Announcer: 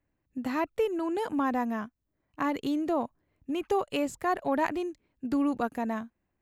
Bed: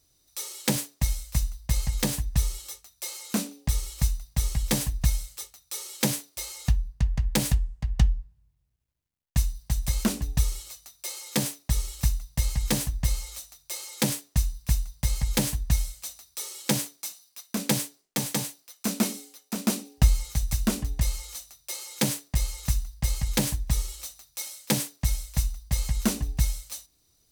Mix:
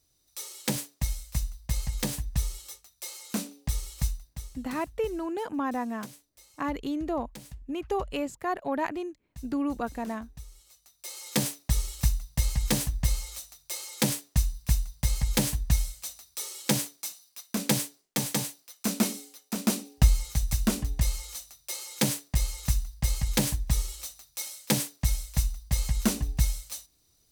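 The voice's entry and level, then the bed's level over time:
4.20 s, −2.0 dB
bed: 0:04.09 −4 dB
0:04.63 −21 dB
0:10.47 −21 dB
0:11.27 −0.5 dB

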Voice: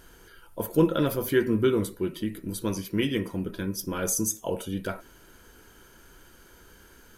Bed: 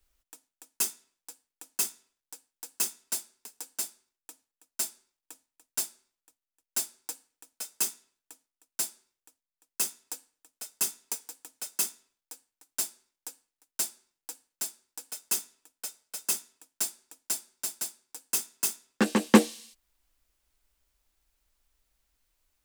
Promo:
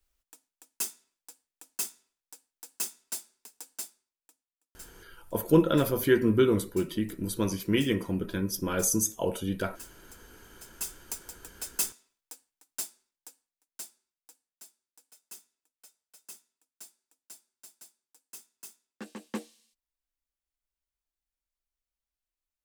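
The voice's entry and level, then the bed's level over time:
4.75 s, +0.5 dB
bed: 0:03.74 −4 dB
0:04.48 −18 dB
0:09.94 −18 dB
0:11.36 −0.5 dB
0:12.24 −0.5 dB
0:14.74 −18.5 dB

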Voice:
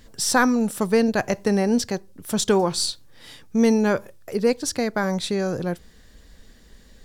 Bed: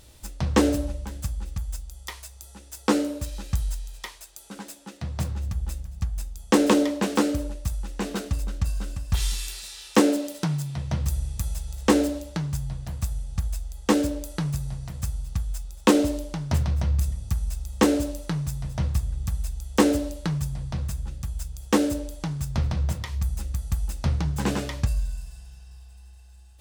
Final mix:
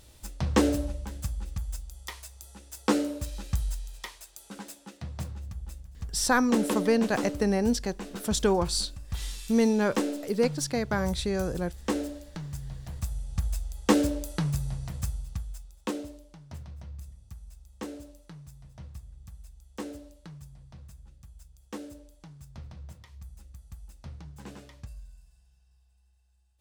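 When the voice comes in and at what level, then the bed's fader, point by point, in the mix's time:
5.95 s, −5.0 dB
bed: 0:04.71 −3 dB
0:05.47 −10 dB
0:12.37 −10 dB
0:13.54 −1 dB
0:14.95 −1 dB
0:16.19 −19 dB

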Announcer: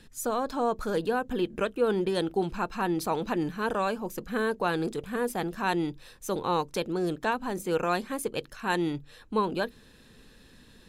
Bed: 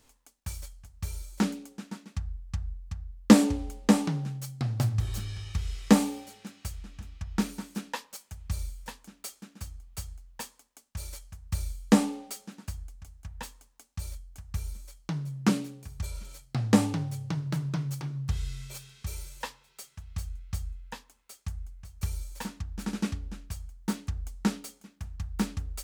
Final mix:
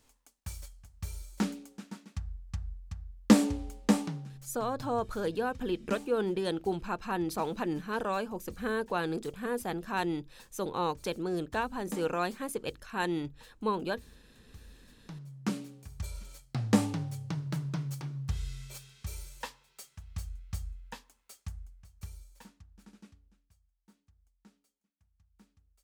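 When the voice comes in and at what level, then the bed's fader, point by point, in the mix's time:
4.30 s, −4.0 dB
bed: 0:03.94 −4 dB
0:04.69 −18.5 dB
0:14.60 −18.5 dB
0:15.93 −3.5 dB
0:21.37 −3.5 dB
0:23.77 −33 dB

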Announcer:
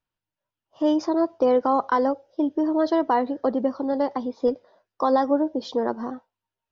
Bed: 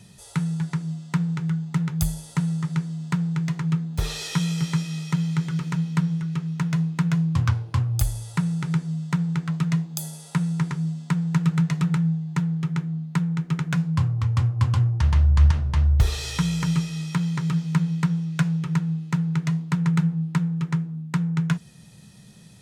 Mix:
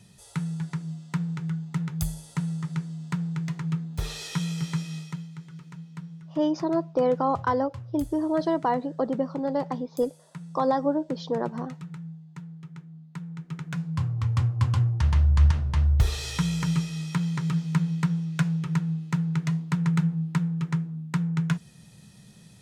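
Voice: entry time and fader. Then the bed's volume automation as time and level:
5.55 s, −3.5 dB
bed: 0:04.97 −5 dB
0:05.30 −17 dB
0:12.92 −17 dB
0:14.29 −2.5 dB

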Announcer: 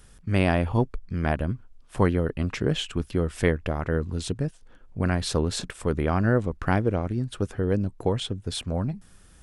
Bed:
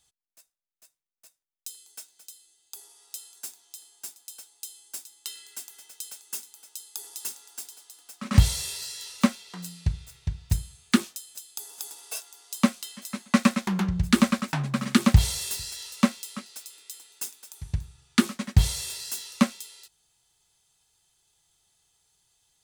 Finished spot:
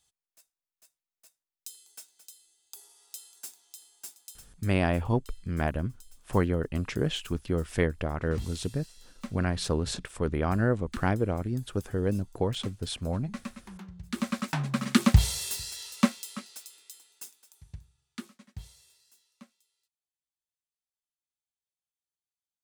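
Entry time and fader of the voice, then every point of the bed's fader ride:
4.35 s, −3.5 dB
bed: 0:04.30 −4 dB
0:04.85 −19 dB
0:14.03 −19 dB
0:14.44 −2 dB
0:16.47 −2 dB
0:19.29 −31.5 dB

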